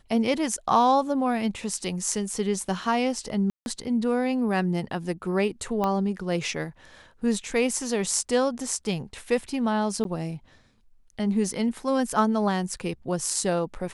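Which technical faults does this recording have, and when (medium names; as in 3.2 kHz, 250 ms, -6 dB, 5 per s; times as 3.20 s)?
3.50–3.66 s: dropout 161 ms
5.84 s: pop -14 dBFS
10.04–10.05 s: dropout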